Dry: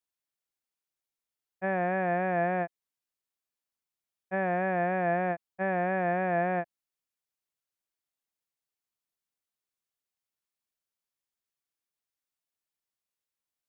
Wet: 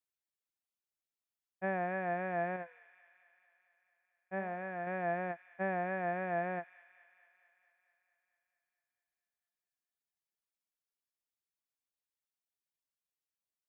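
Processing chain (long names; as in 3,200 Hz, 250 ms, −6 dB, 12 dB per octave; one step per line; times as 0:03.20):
reverb reduction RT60 1.2 s
0:02.56–0:04.87: flanger 1.5 Hz, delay 9 ms, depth 2.4 ms, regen +85%
delay with a high-pass on its return 222 ms, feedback 68%, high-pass 2,600 Hz, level −11.5 dB
level −4.5 dB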